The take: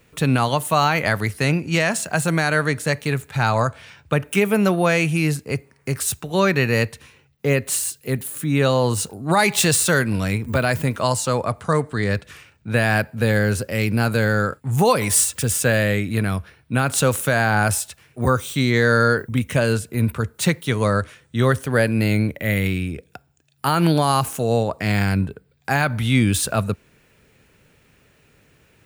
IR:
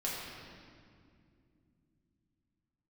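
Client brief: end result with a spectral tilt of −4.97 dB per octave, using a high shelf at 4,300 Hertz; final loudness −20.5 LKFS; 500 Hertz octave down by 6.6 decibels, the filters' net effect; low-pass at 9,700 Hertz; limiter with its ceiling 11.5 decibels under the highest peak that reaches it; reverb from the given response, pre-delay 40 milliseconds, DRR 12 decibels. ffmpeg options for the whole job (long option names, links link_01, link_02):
-filter_complex "[0:a]lowpass=9700,equalizer=frequency=500:width_type=o:gain=-8,highshelf=frequency=4300:gain=-6.5,alimiter=limit=-19dB:level=0:latency=1,asplit=2[link_01][link_02];[1:a]atrim=start_sample=2205,adelay=40[link_03];[link_02][link_03]afir=irnorm=-1:irlink=0,volume=-16.5dB[link_04];[link_01][link_04]amix=inputs=2:normalize=0,volume=8.5dB"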